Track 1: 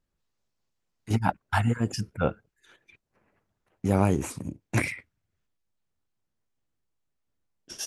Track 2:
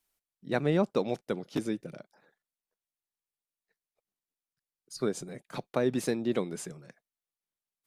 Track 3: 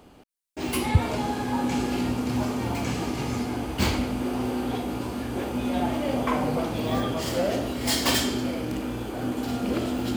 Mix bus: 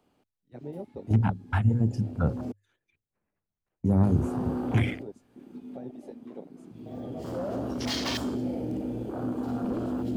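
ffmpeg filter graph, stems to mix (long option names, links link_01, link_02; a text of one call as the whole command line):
ffmpeg -i stem1.wav -i stem2.wav -i stem3.wav -filter_complex "[0:a]lowshelf=frequency=200:gain=9,bandreject=frequency=60:width_type=h:width=6,bandreject=frequency=120:width_type=h:width=6,bandreject=frequency=180:width_type=h:width=6,bandreject=frequency=240:width_type=h:width=6,bandreject=frequency=300:width_type=h:width=6,bandreject=frequency=360:width_type=h:width=6,bandreject=frequency=420:width_type=h:width=6,bandreject=frequency=480:width_type=h:width=6,bandreject=frequency=540:width_type=h:width=6,volume=-0.5dB[link_01];[1:a]aecho=1:1:7.3:0.32,flanger=delay=9:depth=1.3:regen=-56:speed=1.7:shape=triangular,asubboost=boost=3:cutoff=56,volume=-8dB,asplit=2[link_02][link_03];[2:a]highpass=78,volume=23dB,asoftclip=hard,volume=-23dB,volume=-0.5dB,asplit=3[link_04][link_05][link_06];[link_04]atrim=end=2.52,asetpts=PTS-STARTPTS,afade=type=out:start_time=2.516:duration=0.004:curve=hsin[link_07];[link_05]atrim=start=2.52:end=4.03,asetpts=PTS-STARTPTS,volume=0[link_08];[link_06]atrim=start=4.03,asetpts=PTS-STARTPTS,afade=type=in:duration=0.004:curve=hsin[link_09];[link_07][link_08][link_09]concat=n=3:v=0:a=1[link_10];[link_03]apad=whole_len=448151[link_11];[link_10][link_11]sidechaincompress=threshold=-58dB:ratio=4:attack=16:release=739[link_12];[link_01][link_02][link_12]amix=inputs=3:normalize=0,afwtdn=0.0251,bandreject=frequency=50:width_type=h:width=6,bandreject=frequency=100:width_type=h:width=6,acrossover=split=250|3000[link_13][link_14][link_15];[link_14]acompressor=threshold=-33dB:ratio=2.5[link_16];[link_13][link_16][link_15]amix=inputs=3:normalize=0" out.wav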